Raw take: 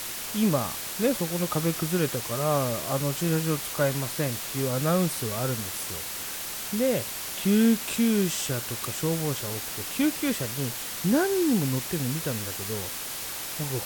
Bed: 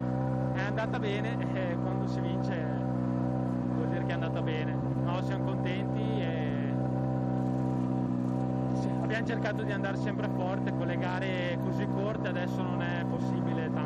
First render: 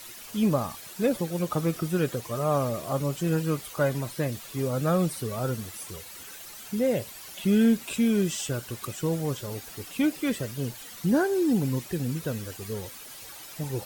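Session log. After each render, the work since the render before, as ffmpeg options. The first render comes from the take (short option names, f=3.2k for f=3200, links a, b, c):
-af "afftdn=nr=12:nf=-35"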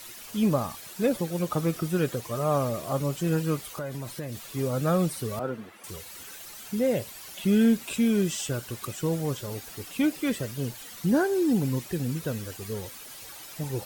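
-filter_complex "[0:a]asettb=1/sr,asplit=3[a][b][c];[a]atrim=end=3.704[d];[b]atrim=start=3.7:end=4.49,asetpts=PTS-STARTPTS,afade=t=in:d=0.004:c=qsin,afade=t=out:st=0.786:d=0.004:c=qsin,acompressor=threshold=-31dB:ratio=5:attack=3.2:release=140:knee=1:detection=peak[e];[c]atrim=start=4.486[f];[d][e]acrossfade=d=0.004:c1=hsin:c2=qsin[g];[g][f]acrossfade=d=0.004:c1=qsin:c2=hsin,asettb=1/sr,asplit=3[h][i][j];[h]atrim=end=5.394[k];[i]atrim=start=5.39:end=5.84,asetpts=PTS-STARTPTS,afade=t=in:d=0.004:c=qsin,afade=t=out:st=0.446:d=0.004:c=qsin,acrossover=split=170 2700:gain=0.0794 1 0.1[l][m][n];[l][m][n]amix=inputs=3:normalize=0[o];[j]atrim=start=5.836[p];[k][o]acrossfade=d=0.004:c1=hsin:c2=qsin[q];[q][p]acrossfade=d=0.004:c1=qsin:c2=hsin"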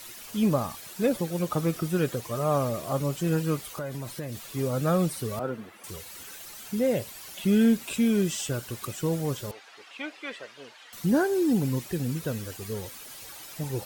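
-filter_complex "[0:a]asettb=1/sr,asplit=3[a][b][c];[a]atrim=end=9.514[d];[b]atrim=start=9.51:end=10.93,asetpts=PTS-STARTPTS,afade=t=in:d=0.004:c=qsin,afade=t=out:st=1.416:d=0.004:c=qsin,highpass=750,lowpass=3.3k[e];[c]atrim=start=10.926[f];[d][e]acrossfade=d=0.004:c1=hsin:c2=qsin[g];[g][f]acrossfade=d=0.004:c1=qsin:c2=hsin"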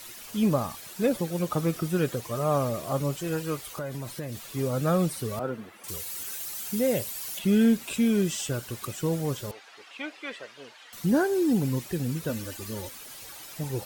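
-filter_complex "[0:a]asettb=1/sr,asplit=3[a][b][c];[a]atrim=end=3.174[d];[b]atrim=start=3.17:end=3.67,asetpts=PTS-STARTPTS,afade=t=in:d=0.004:c=qsin,afade=t=out:st=0.496:d=0.004:c=qsin,equalizer=f=200:w=1.5:g=-10.5[e];[c]atrim=start=3.666[f];[d][e]acrossfade=d=0.004:c1=hsin:c2=qsin[g];[g][f]acrossfade=d=0.004:c1=qsin:c2=hsin,asettb=1/sr,asplit=3[h][i][j];[h]atrim=end=5.884[k];[i]atrim=start=5.88:end=7.39,asetpts=PTS-STARTPTS,afade=t=in:d=0.004:c=qsin,afade=t=out:st=1.506:d=0.004:c=qsin,aemphasis=mode=production:type=cd[l];[j]atrim=start=7.386[m];[k][l]acrossfade=d=0.004:c1=hsin:c2=qsin[n];[n][m]acrossfade=d=0.004:c1=qsin:c2=hsin,asettb=1/sr,asplit=3[o][p][q];[o]atrim=end=12.294[r];[p]atrim=start=12.29:end=12.89,asetpts=PTS-STARTPTS,afade=t=in:d=0.004:c=qsin,afade=t=out:st=0.596:d=0.004:c=qsin,aecho=1:1:3.4:0.66,atrim=end_sample=26460[s];[q]atrim=start=12.886[t];[r][s]acrossfade=d=0.004:c1=hsin:c2=qsin[u];[u][t]acrossfade=d=0.004:c1=qsin:c2=hsin"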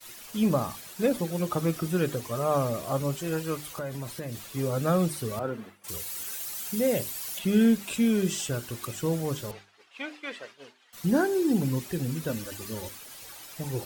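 -af "agate=range=-33dB:threshold=-41dB:ratio=3:detection=peak,bandreject=f=50:t=h:w=6,bandreject=f=100:t=h:w=6,bandreject=f=150:t=h:w=6,bandreject=f=200:t=h:w=6,bandreject=f=250:t=h:w=6,bandreject=f=300:t=h:w=6,bandreject=f=350:t=h:w=6,bandreject=f=400:t=h:w=6"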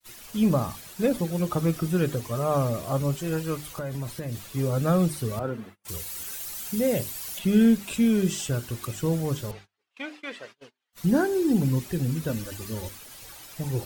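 -af "lowshelf=f=130:g=10,agate=range=-23dB:threshold=-46dB:ratio=16:detection=peak"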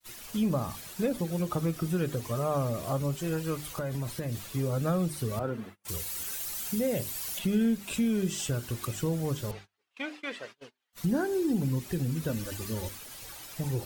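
-af "acompressor=threshold=-29dB:ratio=2"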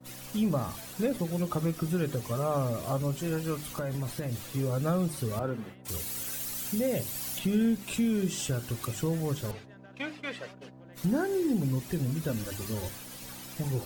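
-filter_complex "[1:a]volume=-20dB[a];[0:a][a]amix=inputs=2:normalize=0"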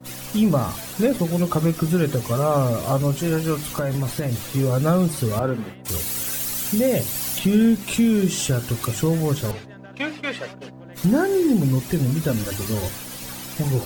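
-af "volume=9.5dB"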